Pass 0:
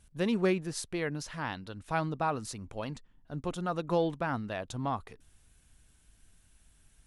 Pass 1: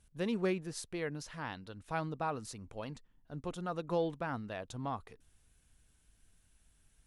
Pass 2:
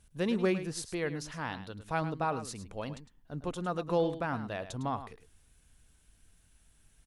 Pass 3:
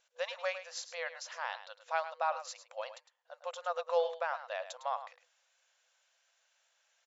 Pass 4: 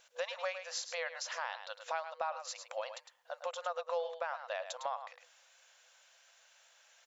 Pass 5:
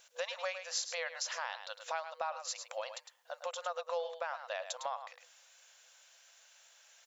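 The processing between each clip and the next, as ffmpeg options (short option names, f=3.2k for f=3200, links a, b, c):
-af "equalizer=f=470:w=6.6:g=3,volume=-5.5dB"
-af "aecho=1:1:106:0.251,volume=4dB"
-af "afftfilt=real='re*between(b*sr/4096,490,7500)':imag='im*between(b*sr/4096,490,7500)':win_size=4096:overlap=0.75"
-af "acompressor=threshold=-48dB:ratio=3,volume=9.5dB"
-af "highshelf=f=4.2k:g=7.5,volume=-1dB"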